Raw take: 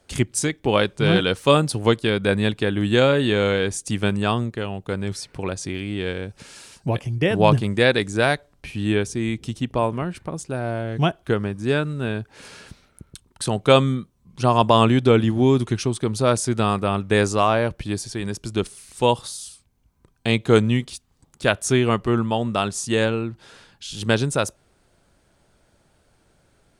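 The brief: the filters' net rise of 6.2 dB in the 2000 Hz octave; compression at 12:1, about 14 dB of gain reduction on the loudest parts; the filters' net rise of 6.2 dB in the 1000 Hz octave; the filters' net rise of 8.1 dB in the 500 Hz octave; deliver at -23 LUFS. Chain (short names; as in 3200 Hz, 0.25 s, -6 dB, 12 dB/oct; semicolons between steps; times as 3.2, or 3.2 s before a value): bell 500 Hz +8.5 dB; bell 1000 Hz +3.5 dB; bell 2000 Hz +6.5 dB; compressor 12:1, threshold -17 dBFS; gain +0.5 dB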